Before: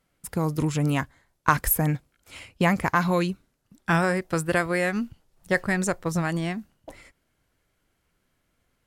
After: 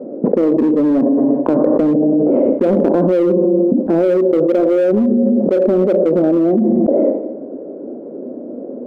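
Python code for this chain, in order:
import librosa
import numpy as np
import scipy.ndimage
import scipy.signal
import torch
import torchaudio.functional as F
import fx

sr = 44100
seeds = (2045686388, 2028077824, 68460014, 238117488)

p1 = scipy.signal.sosfilt(scipy.signal.cheby1(3, 1.0, [240.0, 580.0], 'bandpass', fs=sr, output='sos'), x)
p2 = fx.rev_schroeder(p1, sr, rt60_s=0.82, comb_ms=29, drr_db=11.0)
p3 = np.clip(10.0 ** (32.0 / 20.0) * p2, -1.0, 1.0) / 10.0 ** (32.0 / 20.0)
p4 = p2 + (p3 * 10.0 ** (-3.0 / 20.0))
p5 = fx.env_flatten(p4, sr, amount_pct=100)
y = p5 * 10.0 ** (7.5 / 20.0)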